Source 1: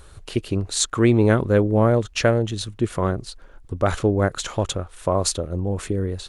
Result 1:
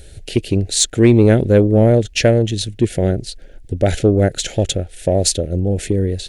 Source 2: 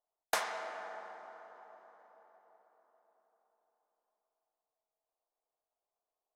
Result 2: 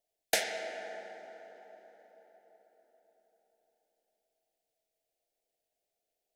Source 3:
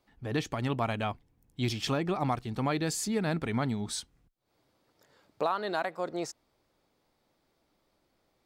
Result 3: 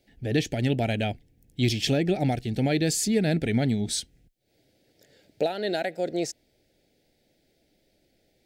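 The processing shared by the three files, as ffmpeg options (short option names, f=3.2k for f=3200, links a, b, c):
-af "asuperstop=centerf=1100:order=4:qfactor=1,acontrast=35,volume=1.5dB"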